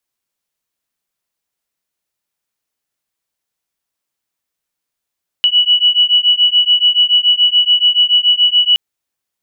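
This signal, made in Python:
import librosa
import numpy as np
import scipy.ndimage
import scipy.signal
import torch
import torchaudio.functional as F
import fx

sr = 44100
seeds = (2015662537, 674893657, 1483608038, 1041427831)

y = fx.two_tone_beats(sr, length_s=3.32, hz=2940.0, beat_hz=7.0, level_db=-11.5)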